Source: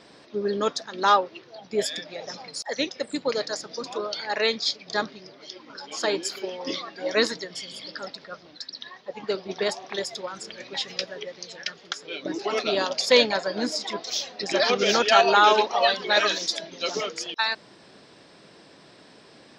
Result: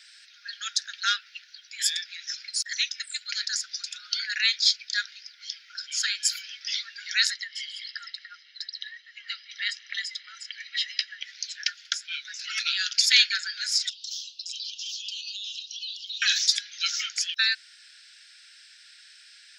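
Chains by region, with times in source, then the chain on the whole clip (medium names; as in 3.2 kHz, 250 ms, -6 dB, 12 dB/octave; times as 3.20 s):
7.30–11.22 s: low-pass 3.6 kHz + comb 1 ms, depth 67%
13.89–16.22 s: steep high-pass 2.8 kHz 96 dB/octave + treble shelf 7.8 kHz -7 dB + compression 5:1, threshold -37 dBFS
whole clip: Chebyshev high-pass 1.4 kHz, order 8; treble shelf 3.3 kHz +8.5 dB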